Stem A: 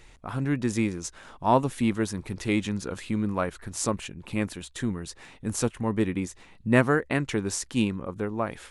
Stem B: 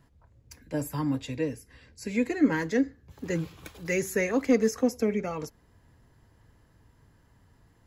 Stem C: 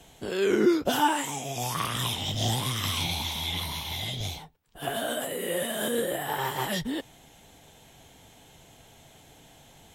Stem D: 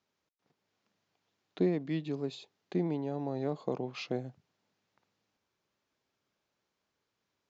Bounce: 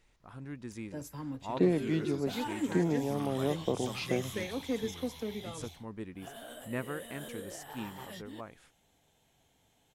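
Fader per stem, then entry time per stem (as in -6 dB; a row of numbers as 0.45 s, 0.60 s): -16.5 dB, -11.5 dB, -16.5 dB, +2.5 dB; 0.00 s, 0.20 s, 1.40 s, 0.00 s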